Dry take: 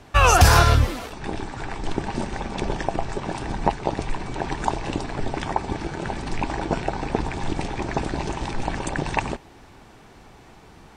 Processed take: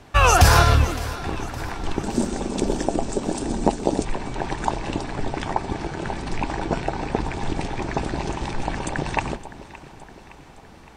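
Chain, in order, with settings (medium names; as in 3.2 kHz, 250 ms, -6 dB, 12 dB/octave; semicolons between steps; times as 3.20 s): 2.03–4.05 s: graphic EQ 125/250/500/1000/2000/8000 Hz -5/+9/+4/-4/-6/+12 dB; echo whose repeats swap between lows and highs 282 ms, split 900 Hz, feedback 74%, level -14 dB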